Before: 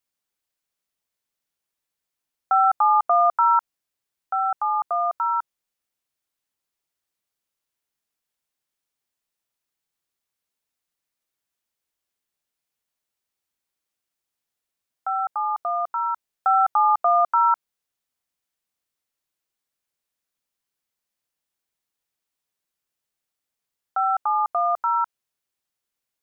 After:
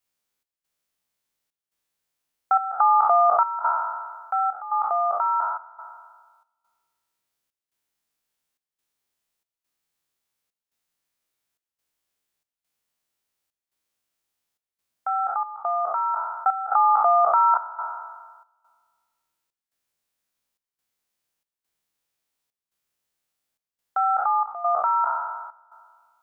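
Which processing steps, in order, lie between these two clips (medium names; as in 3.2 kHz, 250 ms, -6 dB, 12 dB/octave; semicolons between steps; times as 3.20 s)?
spectral sustain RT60 1.56 s; trance gate "xx.xxxx.xxxx.x" 70 bpm -12 dB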